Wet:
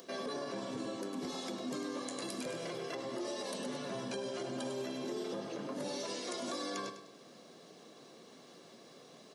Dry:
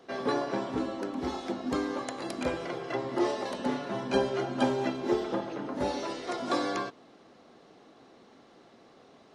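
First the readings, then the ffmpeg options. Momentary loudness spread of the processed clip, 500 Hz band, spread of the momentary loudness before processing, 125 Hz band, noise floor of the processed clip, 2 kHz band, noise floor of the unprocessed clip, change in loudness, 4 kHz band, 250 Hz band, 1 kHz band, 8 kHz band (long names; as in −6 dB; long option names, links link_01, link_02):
17 LU, −8.5 dB, 6 LU, −8.5 dB, −57 dBFS, −8.5 dB, −57 dBFS, −8.0 dB, −2.5 dB, −9.0 dB, −11.0 dB, +2.0 dB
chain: -af "flanger=delay=3.3:depth=9.9:regen=-63:speed=0.31:shape=sinusoidal,highpass=frequency=150:width=0.5412,highpass=frequency=150:width=1.3066,equalizer=frequency=1100:width=0.34:gain=-8.5,aecho=1:1:1.8:0.34,acompressor=threshold=-46dB:ratio=2,aecho=1:1:101|202|303|404:0.282|0.107|0.0407|0.0155,acompressor=mode=upward:threshold=-59dB:ratio=2.5,alimiter=level_in=15dB:limit=-24dB:level=0:latency=1:release=22,volume=-15dB,highshelf=frequency=5800:gain=10.5,volume=7.5dB"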